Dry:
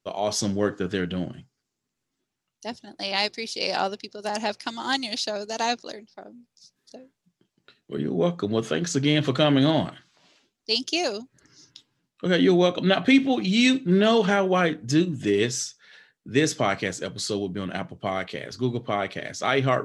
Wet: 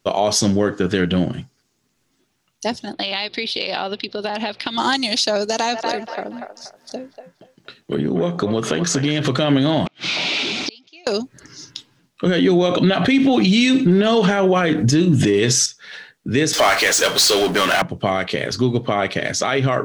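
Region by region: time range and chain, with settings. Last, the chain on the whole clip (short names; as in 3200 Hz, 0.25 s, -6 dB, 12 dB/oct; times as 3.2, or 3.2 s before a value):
2.93–4.78 resonant high shelf 4900 Hz -11 dB, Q 3 + compressor, threshold -34 dBFS
5.5–9.25 compressor 2.5:1, threshold -31 dBFS + band-limited delay 0.239 s, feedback 31%, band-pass 1200 Hz, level -4 dB
9.86–11.07 zero-crossing step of -31.5 dBFS + flipped gate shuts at -23 dBFS, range -38 dB + speaker cabinet 190–5300 Hz, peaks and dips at 490 Hz -3 dB, 1100 Hz -6 dB, 1700 Hz -8 dB, 2400 Hz +10 dB, 3700 Hz +5 dB
12.27–15.66 transient shaper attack +7 dB, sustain -1 dB + fast leveller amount 50%
16.53–17.82 HPF 710 Hz + power-law curve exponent 0.5
whole clip: notch 7500 Hz, Q 25; compressor 2:1, threshold -31 dBFS; maximiser +20.5 dB; gain -6 dB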